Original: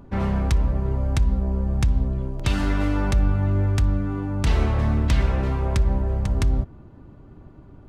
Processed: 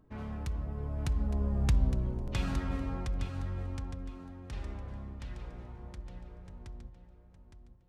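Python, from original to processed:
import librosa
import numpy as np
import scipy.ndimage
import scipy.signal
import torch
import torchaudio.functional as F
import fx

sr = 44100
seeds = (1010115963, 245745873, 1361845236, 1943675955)

p1 = fx.doppler_pass(x, sr, speed_mps=32, closest_m=15.0, pass_at_s=1.76)
p2 = p1 + fx.echo_feedback(p1, sr, ms=863, feedback_pct=24, wet_db=-9, dry=0)
y = p2 * 10.0 ** (-6.0 / 20.0)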